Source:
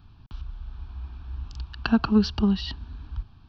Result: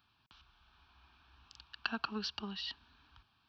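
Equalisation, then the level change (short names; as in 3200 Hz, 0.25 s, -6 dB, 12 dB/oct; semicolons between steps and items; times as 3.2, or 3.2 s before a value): tone controls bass +2 dB, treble -15 dB; differentiator; +6.5 dB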